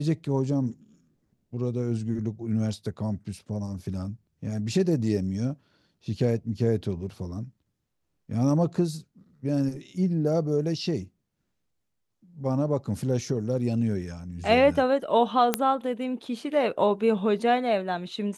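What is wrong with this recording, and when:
0:15.54: click −6 dBFS

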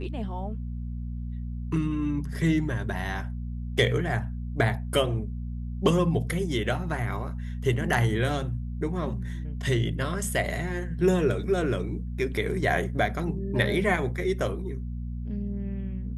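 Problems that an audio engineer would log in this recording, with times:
mains hum 60 Hz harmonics 4 −33 dBFS

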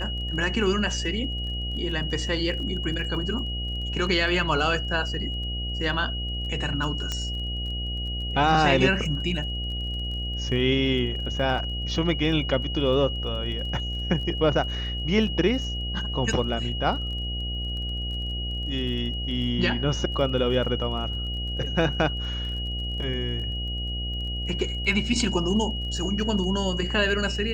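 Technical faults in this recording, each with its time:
mains buzz 60 Hz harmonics 13 −31 dBFS
surface crackle 23 per second −36 dBFS
whistle 2,900 Hz −32 dBFS
0:07.12: click −14 dBFS

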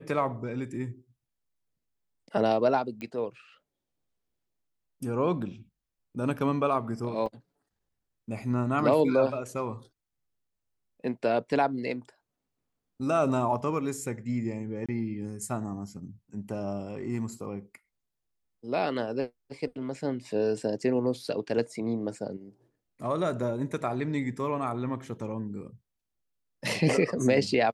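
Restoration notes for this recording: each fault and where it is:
0:03.01: click −26 dBFS
0:07.26: drop-out 3.1 ms
0:14.86–0:14.89: drop-out 26 ms

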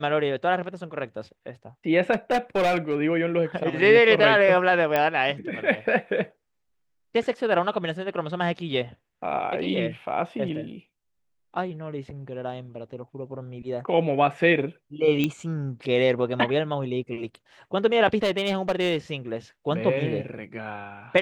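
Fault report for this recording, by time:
0:02.12–0:02.95: clipping −18 dBFS
0:04.96: click −10 dBFS
0:15.24: click −11 dBFS
0:18.17–0:18.96: clipping −19 dBFS

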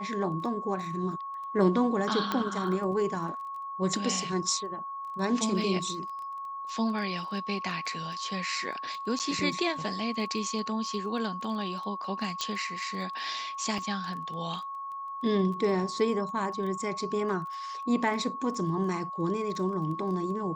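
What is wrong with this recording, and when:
surface crackle 13 per second −38 dBFS
whistle 1,100 Hz −35 dBFS
0:02.32: click −15 dBFS
0:09.19–0:09.20: drop-out 8.7 ms
0:12.41: click −16 dBFS
0:13.78: drop-out 3.1 ms

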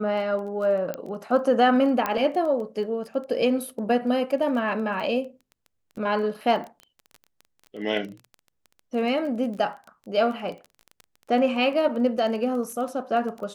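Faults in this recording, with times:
surface crackle 14 per second −32 dBFS
0:00.94: click −16 dBFS
0:02.06: click −11 dBFS

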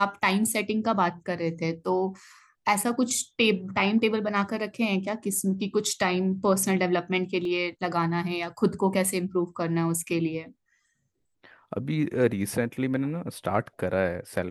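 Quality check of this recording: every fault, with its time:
0:07.45: drop-out 2.1 ms

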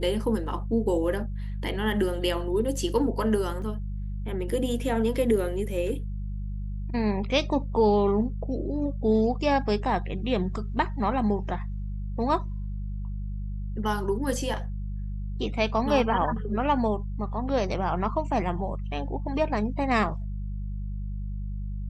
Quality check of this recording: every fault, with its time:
mains hum 50 Hz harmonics 4 −32 dBFS
0:03.62: drop-out 2.4 ms

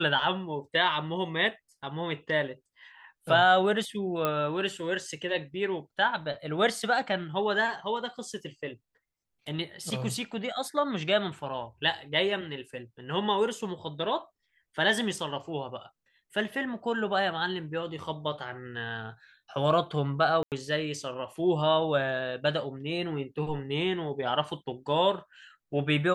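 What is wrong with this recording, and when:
0:04.25: click −13 dBFS
0:20.43–0:20.52: drop-out 88 ms

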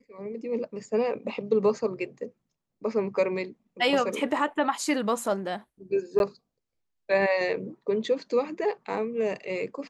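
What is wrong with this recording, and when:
0:06.19–0:06.20: drop-out 11 ms

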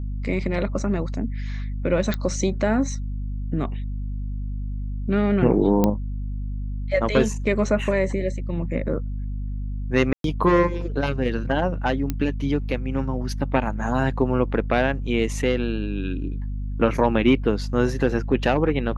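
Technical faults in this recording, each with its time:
mains hum 50 Hz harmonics 5 −28 dBFS
0:02.14: click −12 dBFS
0:05.84: click −7 dBFS
0:10.13–0:10.24: drop-out 112 ms
0:12.10: click −11 dBFS

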